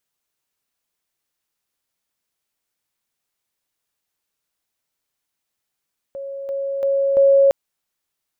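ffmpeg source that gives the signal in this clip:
-f lavfi -i "aevalsrc='pow(10,(-27.5+6*floor(t/0.34))/20)*sin(2*PI*551*t)':d=1.36:s=44100"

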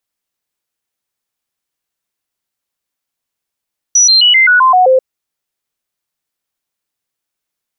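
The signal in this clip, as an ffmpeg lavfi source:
-f lavfi -i "aevalsrc='0.596*clip(min(mod(t,0.13),0.13-mod(t,0.13))/0.005,0,1)*sin(2*PI*5880*pow(2,-floor(t/0.13)/2)*mod(t,0.13))':d=1.04:s=44100"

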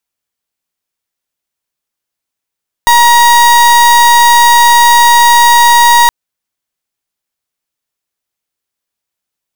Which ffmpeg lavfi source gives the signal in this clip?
-f lavfi -i "aevalsrc='0.562*(2*lt(mod(949*t,1),0.36)-1)':d=3.22:s=44100"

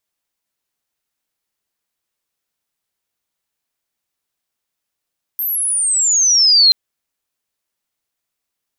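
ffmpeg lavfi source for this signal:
-f lavfi -i "aevalsrc='pow(10,(-17.5+11.5*t/1.33)/20)*sin(2*PI*13000*1.33/log(4100/13000)*(exp(log(4100/13000)*t/1.33)-1))':d=1.33:s=44100"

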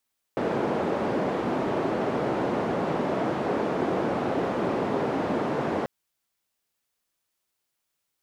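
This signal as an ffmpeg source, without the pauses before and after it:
-f lavfi -i "anoisesrc=c=white:d=5.49:r=44100:seed=1,highpass=f=190,lowpass=f=550,volume=-4.4dB"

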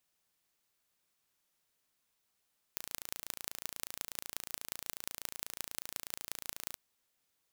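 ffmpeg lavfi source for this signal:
-f lavfi -i "aevalsrc='0.376*eq(mod(n,1564),0)*(0.5+0.5*eq(mod(n,7820),0))':d=3.99:s=44100"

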